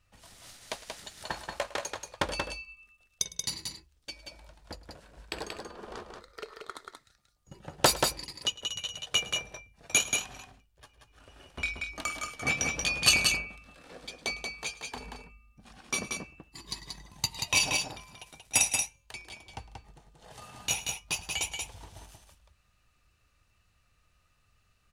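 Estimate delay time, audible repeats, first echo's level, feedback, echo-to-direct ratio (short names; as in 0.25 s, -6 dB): 0.106 s, 2, -19.0 dB, no steady repeat, -4.5 dB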